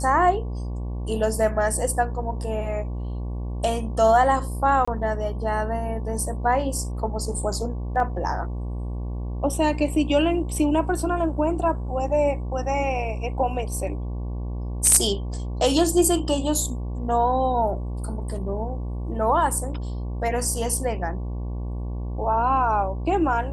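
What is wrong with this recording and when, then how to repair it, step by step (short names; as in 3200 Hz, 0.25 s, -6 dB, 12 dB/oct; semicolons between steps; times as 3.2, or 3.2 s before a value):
buzz 60 Hz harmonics 19 -29 dBFS
4.85–4.88 gap 25 ms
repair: de-hum 60 Hz, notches 19; interpolate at 4.85, 25 ms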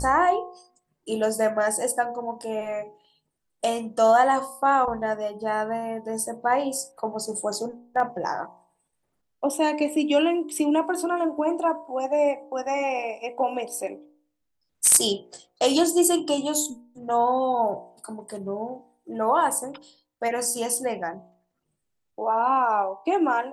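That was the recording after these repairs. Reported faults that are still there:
none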